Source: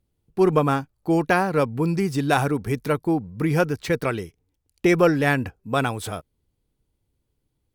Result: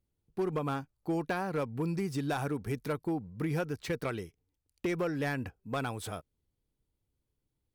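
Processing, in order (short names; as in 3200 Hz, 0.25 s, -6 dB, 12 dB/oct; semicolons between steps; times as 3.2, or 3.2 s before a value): compressor 8:1, threshold -19 dBFS, peak gain reduction 7.5 dB; hard clip -17 dBFS, distortion -20 dB; gain -8.5 dB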